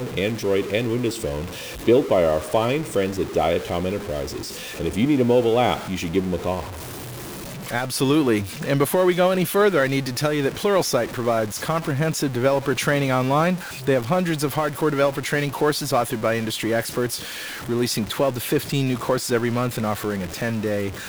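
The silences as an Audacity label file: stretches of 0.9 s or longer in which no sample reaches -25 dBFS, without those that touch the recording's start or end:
6.600000	7.690000	silence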